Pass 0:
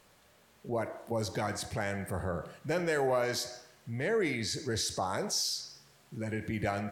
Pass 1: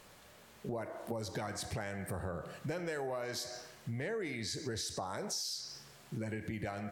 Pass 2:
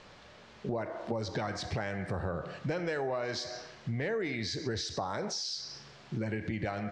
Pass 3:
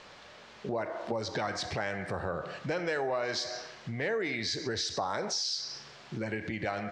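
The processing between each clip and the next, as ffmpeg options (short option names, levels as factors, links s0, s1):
-af "acompressor=threshold=0.00891:ratio=6,volume=1.68"
-af "lowpass=f=5500:w=0.5412,lowpass=f=5500:w=1.3066,volume=1.78"
-af "lowshelf=f=280:g=-9.5,volume=1.58"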